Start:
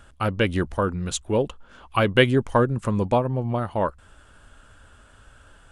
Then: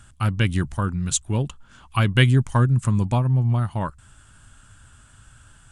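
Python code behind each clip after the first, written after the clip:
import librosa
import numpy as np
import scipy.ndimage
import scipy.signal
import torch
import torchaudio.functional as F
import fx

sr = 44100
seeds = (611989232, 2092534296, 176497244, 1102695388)

y = fx.graphic_eq(x, sr, hz=(125, 500, 8000), db=(10, -11, 10))
y = F.gain(torch.from_numpy(y), -1.0).numpy()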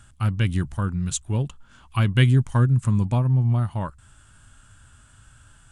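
y = fx.hpss(x, sr, part='percussive', gain_db=-5)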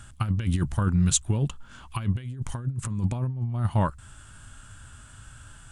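y = fx.over_compress(x, sr, threshold_db=-24.0, ratio=-0.5)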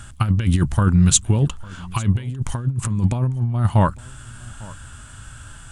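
y = x + 10.0 ** (-22.0 / 20.0) * np.pad(x, (int(851 * sr / 1000.0), 0))[:len(x)]
y = F.gain(torch.from_numpy(y), 7.5).numpy()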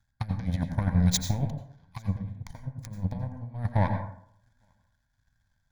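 y = fx.power_curve(x, sr, exponent=2.0)
y = fx.fixed_phaser(y, sr, hz=1900.0, stages=8)
y = fx.rev_plate(y, sr, seeds[0], rt60_s=0.64, hf_ratio=0.45, predelay_ms=75, drr_db=5.5)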